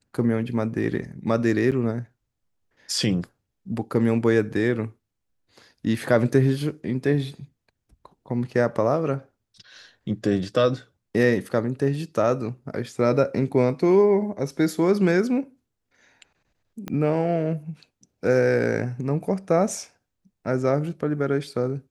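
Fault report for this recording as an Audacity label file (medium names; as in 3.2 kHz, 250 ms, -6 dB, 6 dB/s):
1.710000	1.720000	dropout 7.6 ms
16.880000	16.880000	pop -18 dBFS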